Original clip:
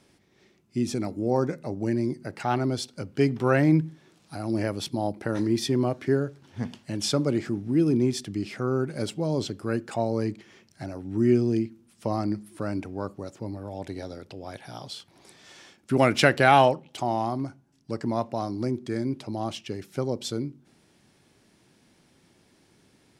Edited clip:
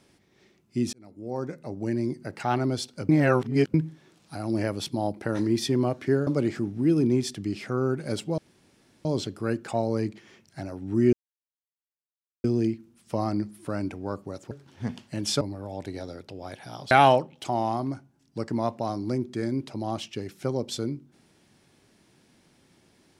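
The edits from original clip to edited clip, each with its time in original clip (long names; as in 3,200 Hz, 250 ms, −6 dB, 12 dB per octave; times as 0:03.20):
0:00.93–0:02.57: fade in equal-power
0:03.09–0:03.74: reverse
0:06.27–0:07.17: move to 0:13.43
0:09.28: splice in room tone 0.67 s
0:11.36: splice in silence 1.31 s
0:14.93–0:16.44: remove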